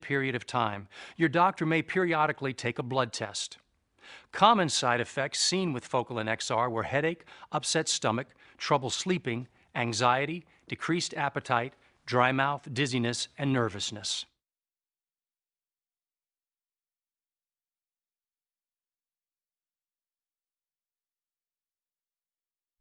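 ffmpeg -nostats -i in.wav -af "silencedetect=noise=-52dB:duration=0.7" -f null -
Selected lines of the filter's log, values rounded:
silence_start: 14.24
silence_end: 22.81 | silence_duration: 8.56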